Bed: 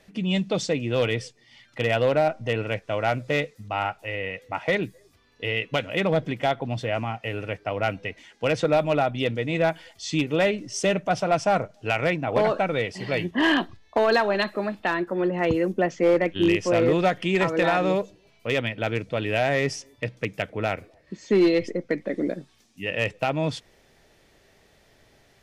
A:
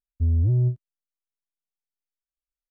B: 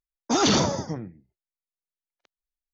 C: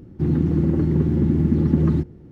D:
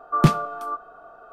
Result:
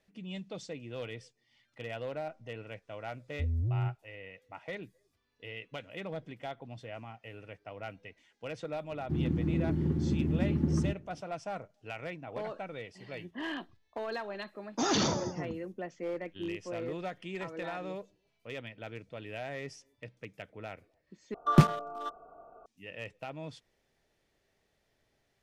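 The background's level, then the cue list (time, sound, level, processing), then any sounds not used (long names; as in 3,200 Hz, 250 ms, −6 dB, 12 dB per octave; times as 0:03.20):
bed −17 dB
0:03.19: mix in A −10.5 dB
0:08.90: mix in C −11 dB
0:14.48: mix in B −8 dB
0:21.34: overwrite with D −4 dB + adaptive Wiener filter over 25 samples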